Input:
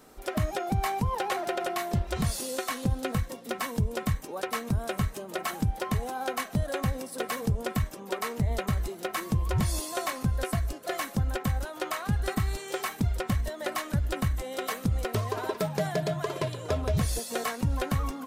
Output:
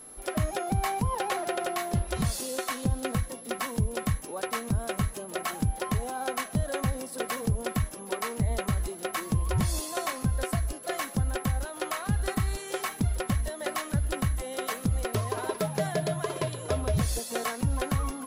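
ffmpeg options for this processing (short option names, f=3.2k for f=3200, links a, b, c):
-af "aeval=exprs='val(0)+0.00562*sin(2*PI*11000*n/s)':c=same"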